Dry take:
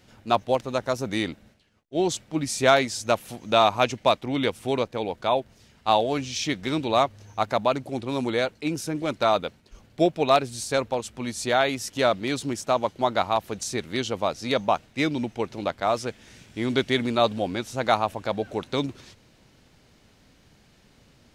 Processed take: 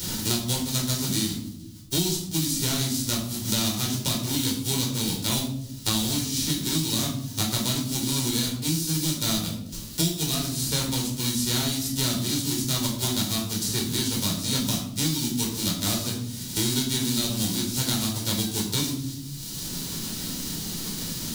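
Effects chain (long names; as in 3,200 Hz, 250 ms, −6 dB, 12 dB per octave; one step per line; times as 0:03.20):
spectral envelope flattened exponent 0.3
flat-topped bell 1,100 Hz −15 dB 2.9 octaves
brickwall limiter −11.5 dBFS, peak gain reduction 10.5 dB
rectangular room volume 670 cubic metres, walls furnished, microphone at 4.6 metres
multiband upward and downward compressor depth 100%
level −3.5 dB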